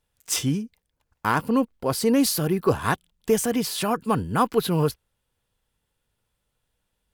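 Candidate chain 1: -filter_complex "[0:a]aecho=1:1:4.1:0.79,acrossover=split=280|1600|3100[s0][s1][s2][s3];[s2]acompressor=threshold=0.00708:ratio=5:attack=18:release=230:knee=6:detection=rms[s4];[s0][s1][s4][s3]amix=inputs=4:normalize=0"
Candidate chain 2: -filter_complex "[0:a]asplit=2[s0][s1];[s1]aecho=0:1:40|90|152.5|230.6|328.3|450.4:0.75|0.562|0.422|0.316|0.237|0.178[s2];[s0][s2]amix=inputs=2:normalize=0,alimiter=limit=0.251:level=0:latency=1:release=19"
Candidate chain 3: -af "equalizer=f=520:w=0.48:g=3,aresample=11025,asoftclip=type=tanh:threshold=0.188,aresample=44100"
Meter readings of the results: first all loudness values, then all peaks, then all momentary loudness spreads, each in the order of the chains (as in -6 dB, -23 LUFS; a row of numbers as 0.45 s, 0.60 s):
-21.5 LUFS, -22.5 LUFS, -25.0 LUFS; -4.5 dBFS, -12.0 dBFS, -14.0 dBFS; 9 LU, 11 LU, 7 LU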